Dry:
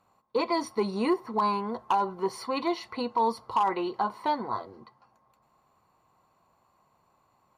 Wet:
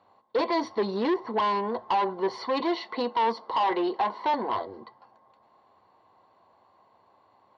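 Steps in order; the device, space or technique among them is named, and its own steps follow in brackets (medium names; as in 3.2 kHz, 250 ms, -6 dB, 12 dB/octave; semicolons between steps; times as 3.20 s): 2.60–4.34 s: steep high-pass 170 Hz 36 dB/octave; guitar amplifier (valve stage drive 28 dB, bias 0.25; tone controls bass -9 dB, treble +5 dB; cabinet simulation 82–3600 Hz, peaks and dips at 93 Hz +5 dB, 150 Hz -8 dB, 1.3 kHz -9 dB, 2.5 kHz -10 dB); trim +9 dB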